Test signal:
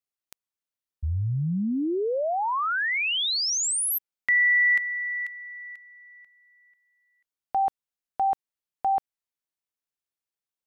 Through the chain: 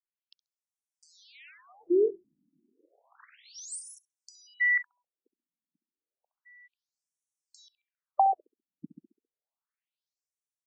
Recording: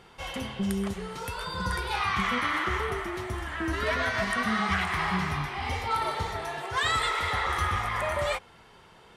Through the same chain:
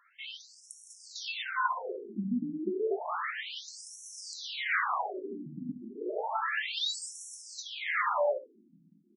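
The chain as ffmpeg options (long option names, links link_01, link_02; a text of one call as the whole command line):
ffmpeg -i in.wav -filter_complex "[0:a]lowshelf=frequency=260:gain=3.5,asplit=2[link_01][link_02];[link_02]acrusher=bits=5:mix=0:aa=0.000001,volume=-4.5dB[link_03];[link_01][link_03]amix=inputs=2:normalize=0,acompressor=threshold=-27dB:ratio=6:attack=31:release=651:knee=1:detection=rms,asplit=2[link_04][link_05];[link_05]adelay=67,lowpass=frequency=2000:poles=1,volume=-12dB,asplit=2[link_06][link_07];[link_07]adelay=67,lowpass=frequency=2000:poles=1,volume=0.39,asplit=2[link_08][link_09];[link_09]adelay=67,lowpass=frequency=2000:poles=1,volume=0.39,asplit=2[link_10][link_11];[link_11]adelay=67,lowpass=frequency=2000:poles=1,volume=0.39[link_12];[link_06][link_08][link_10][link_12]amix=inputs=4:normalize=0[link_13];[link_04][link_13]amix=inputs=2:normalize=0,dynaudnorm=framelen=180:gausssize=11:maxgain=12.5dB,afftfilt=real='re*between(b*sr/1024,220*pow(7800/220,0.5+0.5*sin(2*PI*0.31*pts/sr))/1.41,220*pow(7800/220,0.5+0.5*sin(2*PI*0.31*pts/sr))*1.41)':imag='im*between(b*sr/1024,220*pow(7800/220,0.5+0.5*sin(2*PI*0.31*pts/sr))/1.41,220*pow(7800/220,0.5+0.5*sin(2*PI*0.31*pts/sr))*1.41)':win_size=1024:overlap=0.75,volume=-5.5dB" out.wav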